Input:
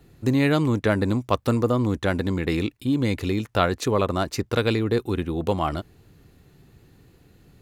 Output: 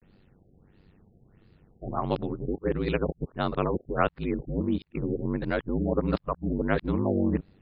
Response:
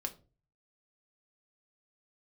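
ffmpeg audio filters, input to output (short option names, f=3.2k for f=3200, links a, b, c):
-af "areverse,aeval=exprs='val(0)*sin(2*PI*48*n/s)':c=same,afftfilt=real='re*lt(b*sr/1024,750*pow(5200/750,0.5+0.5*sin(2*PI*1.5*pts/sr)))':imag='im*lt(b*sr/1024,750*pow(5200/750,0.5+0.5*sin(2*PI*1.5*pts/sr)))':win_size=1024:overlap=0.75,volume=-2dB"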